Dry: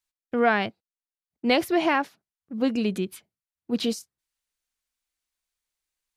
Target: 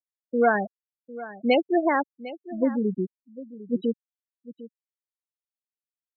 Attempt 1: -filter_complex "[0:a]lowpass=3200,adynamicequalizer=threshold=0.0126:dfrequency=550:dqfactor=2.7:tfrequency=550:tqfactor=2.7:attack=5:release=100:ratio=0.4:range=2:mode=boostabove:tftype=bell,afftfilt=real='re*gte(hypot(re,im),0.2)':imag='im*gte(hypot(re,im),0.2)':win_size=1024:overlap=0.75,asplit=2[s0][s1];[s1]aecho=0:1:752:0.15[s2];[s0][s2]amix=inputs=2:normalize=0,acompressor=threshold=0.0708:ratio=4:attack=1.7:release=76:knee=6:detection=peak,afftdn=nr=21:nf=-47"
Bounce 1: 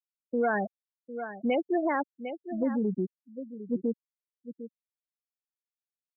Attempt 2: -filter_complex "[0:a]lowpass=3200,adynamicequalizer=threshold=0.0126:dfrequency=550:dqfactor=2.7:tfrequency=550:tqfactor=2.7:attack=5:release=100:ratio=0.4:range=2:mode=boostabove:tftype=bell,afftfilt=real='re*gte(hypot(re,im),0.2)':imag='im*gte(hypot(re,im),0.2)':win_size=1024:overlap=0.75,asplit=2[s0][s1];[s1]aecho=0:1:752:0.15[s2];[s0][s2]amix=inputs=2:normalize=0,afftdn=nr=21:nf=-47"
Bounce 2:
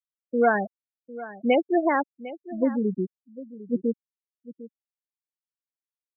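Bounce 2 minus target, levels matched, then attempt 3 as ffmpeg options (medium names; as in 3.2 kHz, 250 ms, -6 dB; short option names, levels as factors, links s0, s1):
4 kHz band -5.0 dB
-filter_complex "[0:a]adynamicequalizer=threshold=0.0126:dfrequency=550:dqfactor=2.7:tfrequency=550:tqfactor=2.7:attack=5:release=100:ratio=0.4:range=2:mode=boostabove:tftype=bell,afftfilt=real='re*gte(hypot(re,im),0.2)':imag='im*gte(hypot(re,im),0.2)':win_size=1024:overlap=0.75,asplit=2[s0][s1];[s1]aecho=0:1:752:0.15[s2];[s0][s2]amix=inputs=2:normalize=0,afftdn=nr=21:nf=-47"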